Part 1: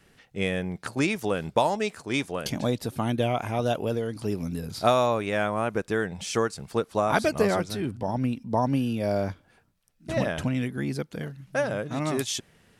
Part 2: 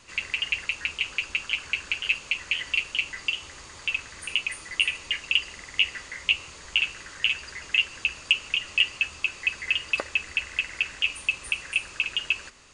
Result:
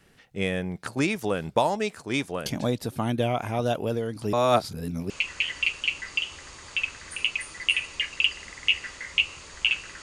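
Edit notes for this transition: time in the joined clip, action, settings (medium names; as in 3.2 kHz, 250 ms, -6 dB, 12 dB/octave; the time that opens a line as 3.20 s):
part 1
4.33–5.10 s: reverse
5.10 s: go over to part 2 from 2.21 s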